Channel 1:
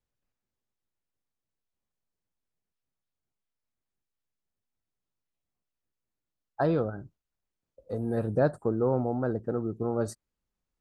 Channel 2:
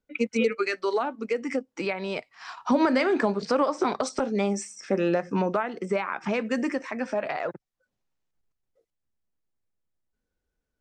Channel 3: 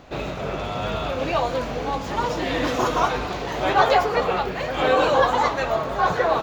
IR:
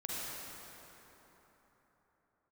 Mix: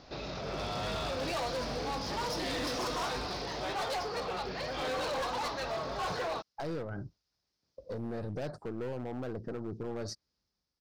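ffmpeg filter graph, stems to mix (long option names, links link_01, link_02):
-filter_complex "[0:a]highpass=frequency=47:width=0.5412,highpass=frequency=47:width=1.3066,aeval=exprs='0.266*(cos(1*acos(clip(val(0)/0.266,-1,1)))-cos(1*PI/2))+0.0237*(cos(8*acos(clip(val(0)/0.266,-1,1)))-cos(8*PI/2))':channel_layout=same,volume=-1.5dB[link_01];[2:a]dynaudnorm=framelen=310:gausssize=3:maxgain=10.5dB,volume=-8.5dB[link_02];[link_01]dynaudnorm=framelen=170:gausssize=7:maxgain=7.5dB,alimiter=limit=-18.5dB:level=0:latency=1:release=389,volume=0dB[link_03];[link_02][link_03]amix=inputs=2:normalize=0,firequalizer=gain_entry='entry(2900,0);entry(5100,15);entry(7700,-10)':delay=0.05:min_phase=1,asoftclip=type=hard:threshold=-24dB,alimiter=level_in=7.5dB:limit=-24dB:level=0:latency=1:release=25,volume=-7.5dB"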